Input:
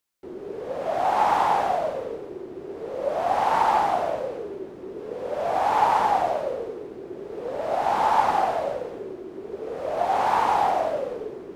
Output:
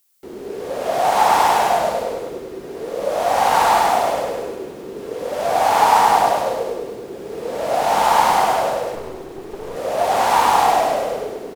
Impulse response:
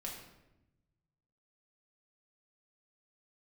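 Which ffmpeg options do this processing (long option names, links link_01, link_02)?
-filter_complex "[0:a]crystalizer=i=3.5:c=0,aecho=1:1:101|202|303|404|505|606|707:0.531|0.292|0.161|0.0883|0.0486|0.0267|0.0147,asplit=2[link_01][link_02];[1:a]atrim=start_sample=2205[link_03];[link_02][link_03]afir=irnorm=-1:irlink=0,volume=-1dB[link_04];[link_01][link_04]amix=inputs=2:normalize=0,asettb=1/sr,asplit=3[link_05][link_06][link_07];[link_05]atrim=end=8.954[link_08];[link_06]atrim=start=8.95:end=9.76,asetpts=PTS-STARTPTS,afade=type=in:duration=0.004:curve=qsin,afade=type=out:start_time=0.806:duration=0.004:curve=qsin,aeval=exprs='clip(val(0),-1,0.0168)':channel_layout=same[link_09];[link_07]atrim=start=9.756[link_10];[link_08][link_09]acrossfade=duration=0.004:curve1=hsin:curve2=qsin[link_11];[link_11][link_10]acrossfade=duration=0.004:curve1=qsin:curve2=hsin"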